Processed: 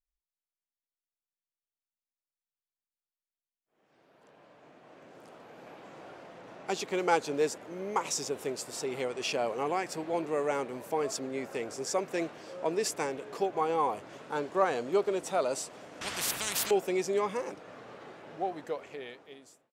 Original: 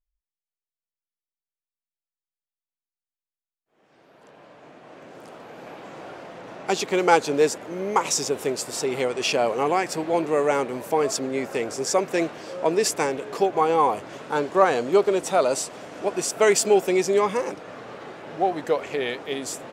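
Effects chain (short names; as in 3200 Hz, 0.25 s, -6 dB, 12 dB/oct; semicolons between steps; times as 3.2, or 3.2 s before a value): ending faded out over 1.56 s; 16.01–16.71 spectral compressor 10:1; gain -9 dB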